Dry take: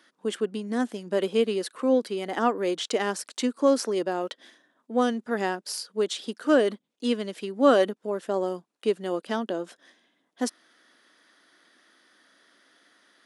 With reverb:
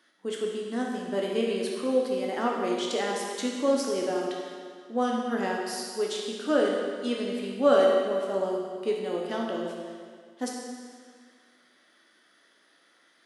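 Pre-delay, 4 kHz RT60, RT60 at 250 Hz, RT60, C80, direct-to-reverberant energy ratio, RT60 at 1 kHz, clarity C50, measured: 12 ms, 1.8 s, 1.9 s, 1.9 s, 2.5 dB, −2.0 dB, 1.9 s, 0.5 dB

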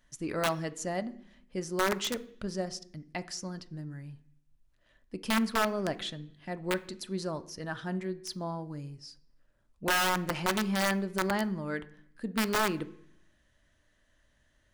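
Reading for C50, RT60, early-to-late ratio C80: 18.0 dB, 0.60 s, 21.5 dB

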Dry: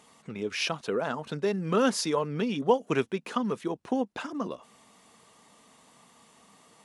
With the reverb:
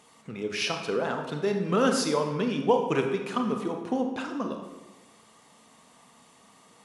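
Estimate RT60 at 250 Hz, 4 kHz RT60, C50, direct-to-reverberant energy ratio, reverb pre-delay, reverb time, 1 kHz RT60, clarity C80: 1.2 s, 0.80 s, 6.0 dB, 4.0 dB, 27 ms, 1.1 s, 1.1 s, 8.0 dB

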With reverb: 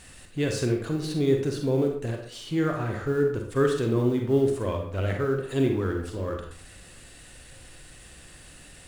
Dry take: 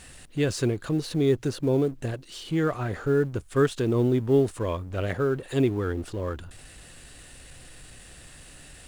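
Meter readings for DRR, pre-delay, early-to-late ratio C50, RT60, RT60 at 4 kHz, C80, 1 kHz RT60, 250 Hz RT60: 2.5 dB, 36 ms, 4.5 dB, 0.55 s, 0.40 s, 9.0 dB, 0.55 s, 0.55 s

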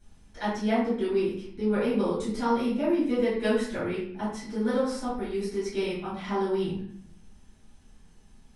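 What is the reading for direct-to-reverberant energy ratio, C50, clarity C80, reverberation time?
−11.0 dB, 2.0 dB, 6.0 dB, 0.60 s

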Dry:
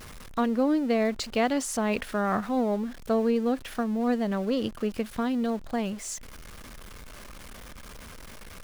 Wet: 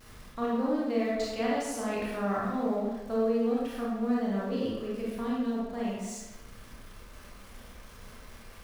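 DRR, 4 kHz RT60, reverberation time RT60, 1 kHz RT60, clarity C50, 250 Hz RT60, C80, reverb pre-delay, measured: −6.0 dB, 0.80 s, 1.2 s, 1.2 s, −2.0 dB, 1.2 s, 2.0 dB, 25 ms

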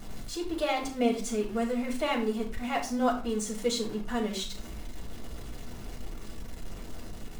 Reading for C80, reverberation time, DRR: 14.0 dB, 0.40 s, −1.0 dB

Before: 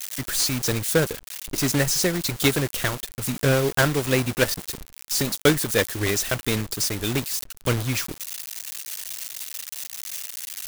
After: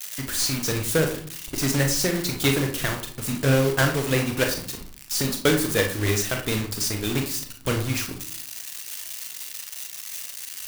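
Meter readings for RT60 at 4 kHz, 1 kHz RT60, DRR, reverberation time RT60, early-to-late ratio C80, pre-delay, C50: 0.40 s, 0.50 s, 3.0 dB, 0.55 s, 13.0 dB, 29 ms, 7.5 dB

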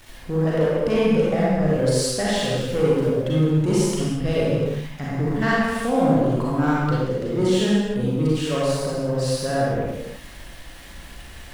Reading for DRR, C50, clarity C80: −7.5 dB, −5.0 dB, −2.0 dB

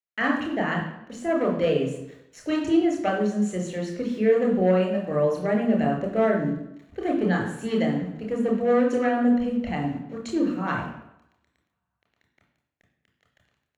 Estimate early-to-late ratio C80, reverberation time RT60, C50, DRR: 8.5 dB, 0.85 s, 5.0 dB, 0.0 dB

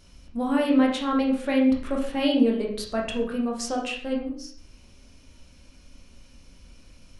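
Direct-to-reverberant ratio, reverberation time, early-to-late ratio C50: −1.0 dB, 0.55 s, 5.5 dB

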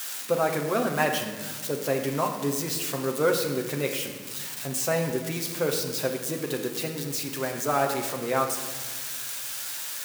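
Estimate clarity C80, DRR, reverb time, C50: 7.5 dB, 2.0 dB, 1.5 s, 6.5 dB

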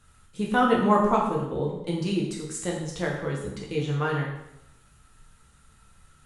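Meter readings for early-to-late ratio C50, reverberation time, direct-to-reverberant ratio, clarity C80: 3.5 dB, 0.80 s, −3.0 dB, 6.5 dB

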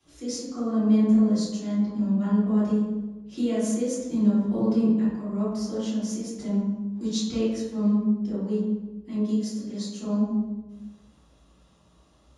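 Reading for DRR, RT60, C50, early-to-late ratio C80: −12.0 dB, 1.2 s, −1.5 dB, 2.5 dB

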